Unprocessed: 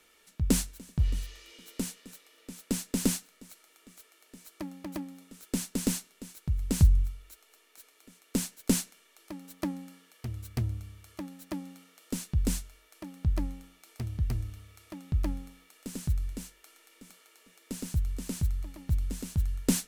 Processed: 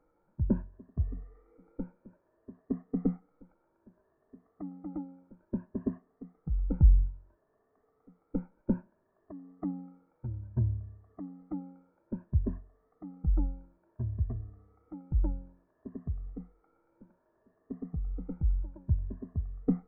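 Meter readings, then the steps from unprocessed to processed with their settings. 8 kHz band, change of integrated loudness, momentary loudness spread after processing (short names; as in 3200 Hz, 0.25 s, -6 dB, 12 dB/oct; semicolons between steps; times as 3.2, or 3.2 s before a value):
under -40 dB, -2.0 dB, 17 LU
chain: moving spectral ripple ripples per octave 1.4, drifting +0.6 Hz, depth 19 dB; in parallel at -9 dB: requantised 8-bit, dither triangular; on the sum: Gaussian blur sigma 8.3 samples; gain -7.5 dB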